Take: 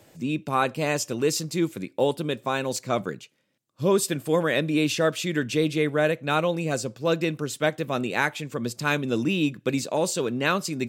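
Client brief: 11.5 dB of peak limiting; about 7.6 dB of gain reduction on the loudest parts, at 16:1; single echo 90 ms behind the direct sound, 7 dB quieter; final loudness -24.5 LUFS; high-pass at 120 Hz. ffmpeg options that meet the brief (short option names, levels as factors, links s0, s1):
-af "highpass=120,acompressor=threshold=0.0631:ratio=16,alimiter=limit=0.0708:level=0:latency=1,aecho=1:1:90:0.447,volume=2.51"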